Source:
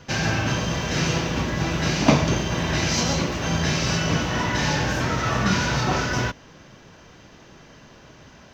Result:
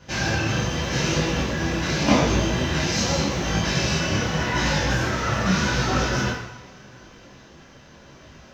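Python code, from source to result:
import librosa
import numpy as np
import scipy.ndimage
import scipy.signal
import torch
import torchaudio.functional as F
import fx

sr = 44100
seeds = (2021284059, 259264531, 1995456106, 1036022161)

y = fx.rev_double_slope(x, sr, seeds[0], early_s=0.76, late_s=2.9, knee_db=-18, drr_db=-1.5)
y = fx.detune_double(y, sr, cents=29)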